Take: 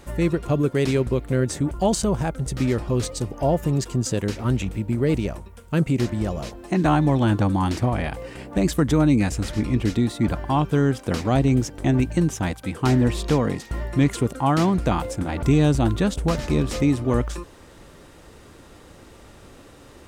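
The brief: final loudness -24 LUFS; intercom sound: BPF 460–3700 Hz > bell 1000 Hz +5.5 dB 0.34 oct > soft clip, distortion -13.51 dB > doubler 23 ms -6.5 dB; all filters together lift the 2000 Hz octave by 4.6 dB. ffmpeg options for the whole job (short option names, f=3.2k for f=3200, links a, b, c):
-filter_complex "[0:a]highpass=460,lowpass=3.7k,equalizer=f=1k:t=o:w=0.34:g=5.5,equalizer=f=2k:t=o:g=6,asoftclip=threshold=-17.5dB,asplit=2[a][b];[b]adelay=23,volume=-6.5dB[c];[a][c]amix=inputs=2:normalize=0,volume=4.5dB"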